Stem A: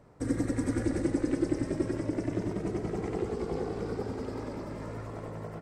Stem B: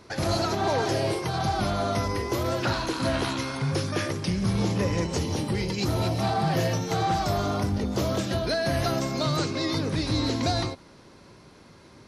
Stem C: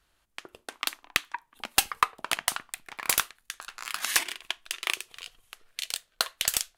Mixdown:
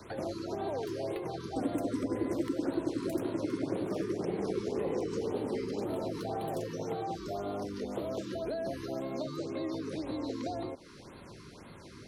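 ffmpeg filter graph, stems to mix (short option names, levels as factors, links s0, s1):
-filter_complex "[0:a]highpass=100,adelay=1350,volume=1.33[s0];[1:a]acrossover=split=280|630|1800|6800[s1][s2][s3][s4][s5];[s1]acompressor=threshold=0.00355:ratio=4[s6];[s2]acompressor=threshold=0.0158:ratio=4[s7];[s3]acompressor=threshold=0.00562:ratio=4[s8];[s4]acompressor=threshold=0.00631:ratio=4[s9];[s5]acompressor=threshold=0.00158:ratio=4[s10];[s6][s7][s8][s9][s10]amix=inputs=5:normalize=0,volume=1.19[s11];[2:a]aphaser=in_gain=1:out_gain=1:delay=3.5:decay=0.77:speed=0.41:type=sinusoidal,volume=0.141,asplit=3[s12][s13][s14];[s12]atrim=end=4.04,asetpts=PTS-STARTPTS,afade=t=out:st=4.036:d=0.004:c=hsin[s15];[s13]atrim=start=4.04:end=4.97,asetpts=PTS-STARTPTS,volume=0[s16];[s14]atrim=start=4.97,asetpts=PTS-STARTPTS,afade=t=in:d=0.004:c=hsin[s17];[s15][s16][s17]concat=n=3:v=0:a=1[s18];[s0][s11][s18]amix=inputs=3:normalize=0,acrossover=split=250|830[s19][s20][s21];[s19]acompressor=threshold=0.00631:ratio=4[s22];[s20]acompressor=threshold=0.0316:ratio=4[s23];[s21]acompressor=threshold=0.00316:ratio=4[s24];[s22][s23][s24]amix=inputs=3:normalize=0,afftfilt=real='re*(1-between(b*sr/1024,640*pow(6600/640,0.5+0.5*sin(2*PI*1.9*pts/sr))/1.41,640*pow(6600/640,0.5+0.5*sin(2*PI*1.9*pts/sr))*1.41))':imag='im*(1-between(b*sr/1024,640*pow(6600/640,0.5+0.5*sin(2*PI*1.9*pts/sr))/1.41,640*pow(6600/640,0.5+0.5*sin(2*PI*1.9*pts/sr))*1.41))':win_size=1024:overlap=0.75"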